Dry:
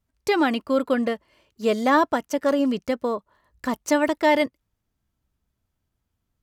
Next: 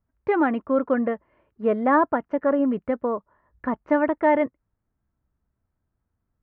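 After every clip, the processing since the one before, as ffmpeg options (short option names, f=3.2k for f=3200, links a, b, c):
-af "lowpass=f=1.8k:w=0.5412,lowpass=f=1.8k:w=1.3066"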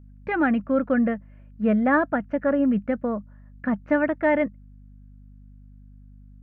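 -af "equalizer=f=200:t=o:w=0.33:g=12,equalizer=f=400:t=o:w=0.33:g=-10,equalizer=f=1k:t=o:w=0.33:g=-11,equalizer=f=1.6k:t=o:w=0.33:g=5,equalizer=f=2.5k:t=o:w=0.33:g=5,aeval=exprs='val(0)+0.00501*(sin(2*PI*50*n/s)+sin(2*PI*2*50*n/s)/2+sin(2*PI*3*50*n/s)/3+sin(2*PI*4*50*n/s)/4+sin(2*PI*5*50*n/s)/5)':c=same"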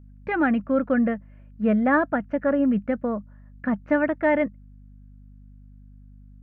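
-af anull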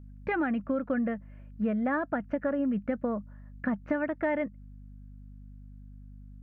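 -af "acompressor=threshold=-26dB:ratio=6"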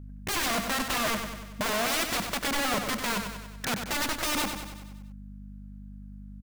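-filter_complex "[0:a]aeval=exprs='(mod(26.6*val(0)+1,2)-1)/26.6':c=same,asplit=2[a][b];[b]aecho=0:1:95|190|285|380|475|570|665:0.447|0.25|0.14|0.0784|0.0439|0.0246|0.0138[c];[a][c]amix=inputs=2:normalize=0,volume=4.5dB"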